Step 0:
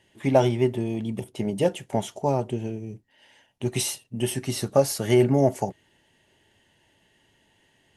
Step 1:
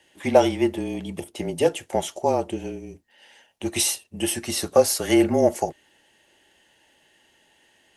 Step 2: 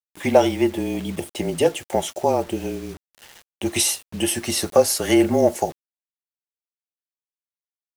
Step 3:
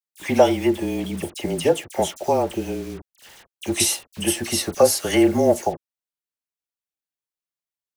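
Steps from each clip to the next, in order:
tone controls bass -13 dB, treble +2 dB; frequency shift -30 Hz; gain +4 dB
in parallel at -1 dB: compressor 6:1, threshold -29 dBFS, peak gain reduction 17.5 dB; on the sum: bit-crush 7-bit
dispersion lows, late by 47 ms, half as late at 2300 Hz

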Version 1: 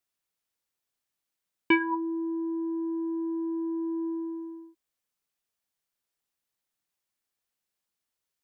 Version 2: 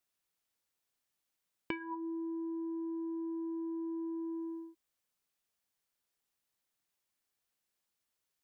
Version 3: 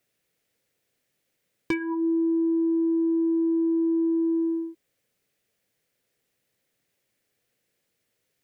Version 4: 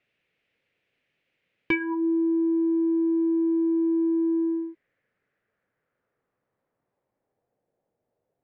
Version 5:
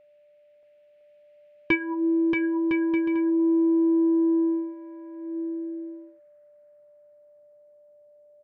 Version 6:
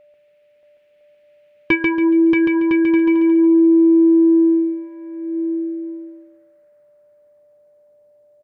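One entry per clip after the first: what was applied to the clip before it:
compressor 20:1, threshold -36 dBFS, peak gain reduction 19.5 dB
graphic EQ 125/250/500/1000/2000 Hz +11/+4/+12/-7/+7 dB; hard clip -26 dBFS, distortion -22 dB; gain +7 dB
low-pass sweep 2600 Hz -> 770 Hz, 3.78–7.7
whine 590 Hz -53 dBFS; bouncing-ball echo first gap 0.63 s, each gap 0.6×, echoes 5; upward expander 1.5:1, over -29 dBFS; gain +2.5 dB
feedback echo 0.14 s, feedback 31%, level -4 dB; gain +6 dB

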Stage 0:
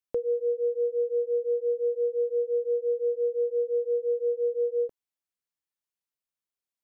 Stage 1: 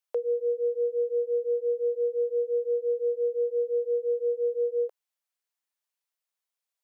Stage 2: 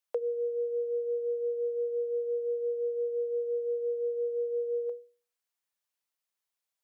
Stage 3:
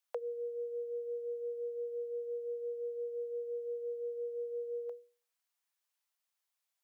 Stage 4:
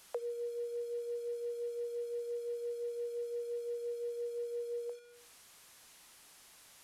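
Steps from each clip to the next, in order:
inverse Chebyshev high-pass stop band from 190 Hz, stop band 50 dB; gain +3.5 dB
notches 60/120/180/240/300/360/420/480 Hz
HPF 600 Hz 24 dB/oct; gain +1 dB
delta modulation 64 kbps, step -52 dBFS

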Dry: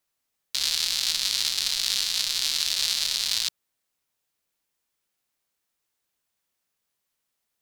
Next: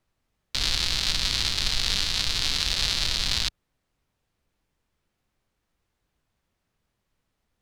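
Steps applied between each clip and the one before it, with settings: RIAA curve playback; gain +6.5 dB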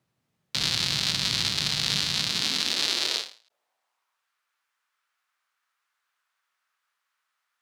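high-pass sweep 140 Hz -> 1300 Hz, 2.09–4.28; ending taper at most 160 dB/s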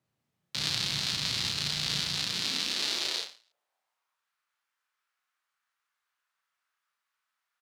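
doubler 34 ms -3 dB; gain -6.5 dB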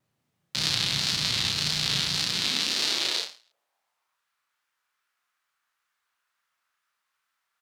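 wow and flutter 64 cents; gain +4.5 dB

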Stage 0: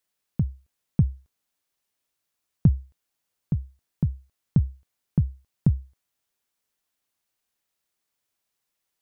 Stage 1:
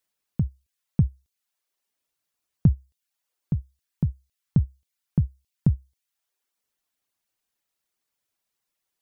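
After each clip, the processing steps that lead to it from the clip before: reverb removal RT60 0.61 s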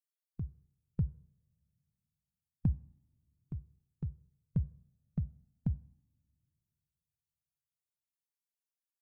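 per-bin expansion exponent 1.5; two-slope reverb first 0.67 s, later 2.8 s, from -22 dB, DRR 16.5 dB; cascading flanger rising 0.31 Hz; gain -6 dB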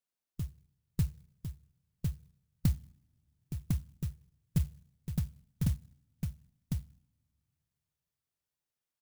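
on a send: echo 1.053 s -3.5 dB; on the sum: clock jitter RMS 0.14 ms; gain +2 dB

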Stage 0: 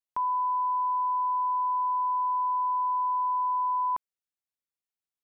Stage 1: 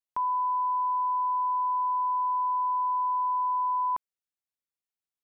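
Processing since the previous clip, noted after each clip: nothing audible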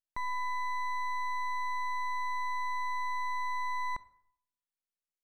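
half-wave rectifier; reverb RT60 0.65 s, pre-delay 18 ms, DRR 17.5 dB; gain -3 dB

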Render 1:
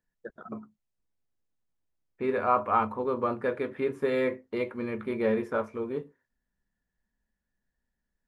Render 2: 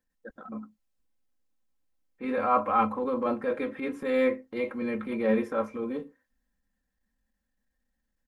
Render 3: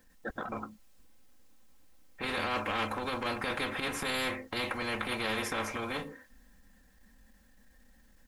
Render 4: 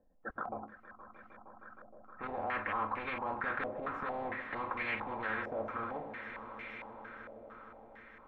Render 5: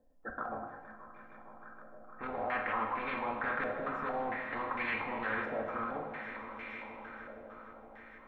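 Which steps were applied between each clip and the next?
comb 3.8 ms, depth 92%; transient shaper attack -8 dB, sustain +1 dB
spectral compressor 4:1; gain -6.5 dB
swelling echo 0.156 s, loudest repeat 5, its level -16.5 dB; stepped low-pass 4.4 Hz 640–2200 Hz; gain -8 dB
reverb, pre-delay 3 ms, DRR 3 dB

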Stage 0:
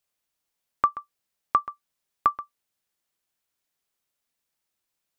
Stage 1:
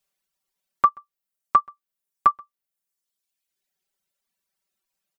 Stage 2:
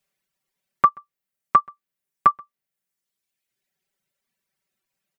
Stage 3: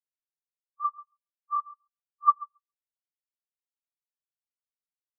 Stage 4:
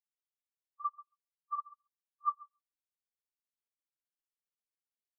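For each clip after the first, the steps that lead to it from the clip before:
reverb removal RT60 1.3 s; comb 5.2 ms, depth 90%
graphic EQ 125/250/500/2000 Hz +10/+4/+4/+6 dB; gain -1 dB
phase scrambler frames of 0.1 s; darkening echo 0.137 s, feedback 31%, low-pass 1800 Hz, level -6 dB; spectral expander 2.5:1; gain -6 dB
tremolo 15 Hz, depth 78%; gain -5 dB

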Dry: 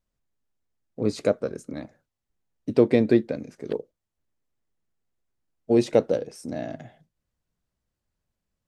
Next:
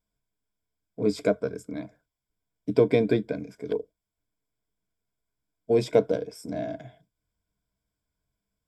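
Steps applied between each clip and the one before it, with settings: ripple EQ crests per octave 1.7, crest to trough 12 dB; gain -2.5 dB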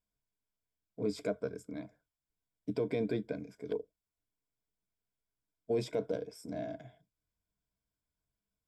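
limiter -15.5 dBFS, peak gain reduction 8 dB; gain -7.5 dB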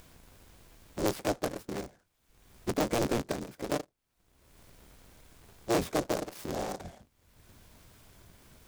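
cycle switcher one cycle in 3, inverted; upward compressor, threshold -36 dBFS; noise-modulated delay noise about 5000 Hz, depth 0.047 ms; gain +4 dB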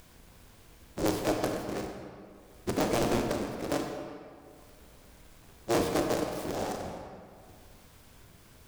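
reverb RT60 2.2 s, pre-delay 26 ms, DRR 2 dB

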